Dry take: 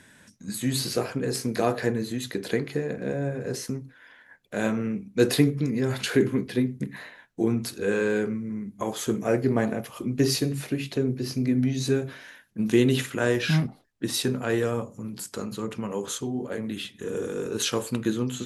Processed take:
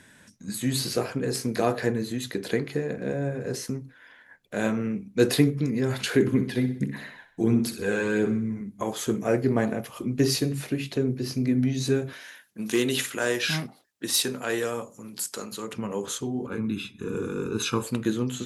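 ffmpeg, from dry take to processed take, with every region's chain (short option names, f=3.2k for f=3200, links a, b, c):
-filter_complex "[0:a]asettb=1/sr,asplit=3[a][b][c];[a]atrim=end=6.274[d];[b]atrim=start=6.27:end=8.61,asetpts=PTS-STARTPTS,afade=t=in:d=0.004:c=qsin,afade=t=out:st=2.336:d=0.004:c=qsin,aphaser=in_gain=1:out_gain=1:delay=1.5:decay=0.42:speed=1.5:type=triangular,aecho=1:1:63|126|189|252|315:0.282|0.127|0.0571|0.0257|0.0116,atrim=end_sample=103194[e];[c]atrim=start=8.606[f];[d][e]acrossfade=d=0.004:c1=hsin:c2=qsin[g];[g][f]acrossfade=d=0.004:c1=qsin:c2=hsin,asettb=1/sr,asplit=3[h][i][j];[h]atrim=end=12.134[k];[i]atrim=start=12.13:end=15.73,asetpts=PTS-STARTPTS,afade=t=in:d=0.004:c=qsin,afade=t=out:st=3.596:d=0.004:c=qsin,highpass=f=410:p=1,highshelf=f=3.6k:g=7,asoftclip=type=hard:threshold=-15dB[l];[j]atrim=start=15.726[m];[k][l]acrossfade=d=0.004:c1=hsin:c2=qsin[n];[n][m]acrossfade=d=0.004:c1=qsin:c2=hsin,asettb=1/sr,asplit=3[o][p][q];[o]atrim=end=16.464[r];[p]atrim=start=16.46:end=17.83,asetpts=PTS-STARTPTS,afade=t=in:d=0.004:c=qsin,afade=t=out:st=1.366:d=0.004:c=qsin,highshelf=f=3.4k:g=-8.5,aecho=1:1:0.8:0.87,atrim=end_sample=60417[s];[q]atrim=start=17.826[t];[r][s]acrossfade=d=0.004:c1=hsin:c2=qsin[u];[u][t]acrossfade=d=0.004:c1=qsin:c2=hsin"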